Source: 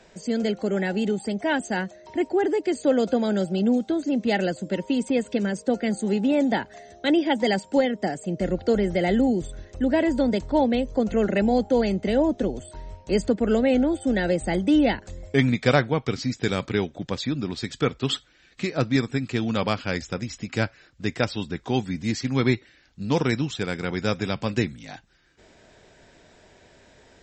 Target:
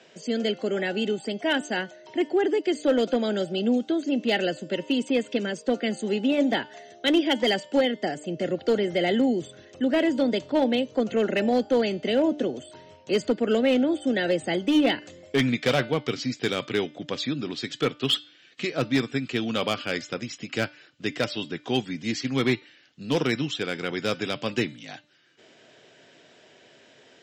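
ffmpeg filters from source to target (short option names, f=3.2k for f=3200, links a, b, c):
-af "highpass=f=140:w=0.5412,highpass=f=140:w=1.3066,equalizer=f=190:t=q:w=4:g=-8,equalizer=f=890:t=q:w=4:g=-5,equalizer=f=3k:t=q:w=4:g=8,lowpass=f=7.3k:w=0.5412,lowpass=f=7.3k:w=1.3066,asoftclip=type=hard:threshold=-15dB,bandreject=f=297.4:t=h:w=4,bandreject=f=594.8:t=h:w=4,bandreject=f=892.2:t=h:w=4,bandreject=f=1.1896k:t=h:w=4,bandreject=f=1.487k:t=h:w=4,bandreject=f=1.7844k:t=h:w=4,bandreject=f=2.0818k:t=h:w=4,bandreject=f=2.3792k:t=h:w=4,bandreject=f=2.6766k:t=h:w=4,bandreject=f=2.974k:t=h:w=4,bandreject=f=3.2714k:t=h:w=4,bandreject=f=3.5688k:t=h:w=4,bandreject=f=3.8662k:t=h:w=4,bandreject=f=4.1636k:t=h:w=4,bandreject=f=4.461k:t=h:w=4,bandreject=f=4.7584k:t=h:w=4,bandreject=f=5.0558k:t=h:w=4"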